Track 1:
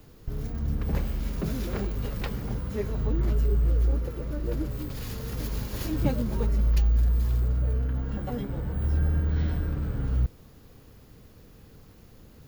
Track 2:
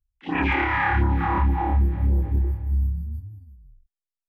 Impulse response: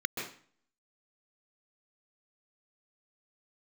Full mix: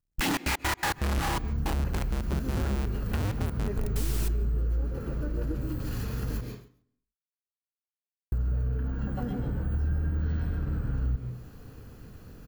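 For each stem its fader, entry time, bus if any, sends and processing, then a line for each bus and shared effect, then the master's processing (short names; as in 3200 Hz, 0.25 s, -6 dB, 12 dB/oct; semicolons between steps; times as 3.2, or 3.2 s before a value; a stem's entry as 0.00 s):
+2.0 dB, 0.90 s, muted 6.41–8.32, send -9.5 dB, echo send -15.5 dB, dry
+1.0 dB, 0.00 s, send -23.5 dB, no echo send, infinite clipping; step gate "..xx.x.x.x.xxxx." 163 bpm -60 dB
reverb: on, RT60 0.45 s, pre-delay 0.123 s
echo: feedback echo 0.137 s, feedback 20%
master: compressor 2.5:1, threshold -29 dBFS, peak gain reduction 10.5 dB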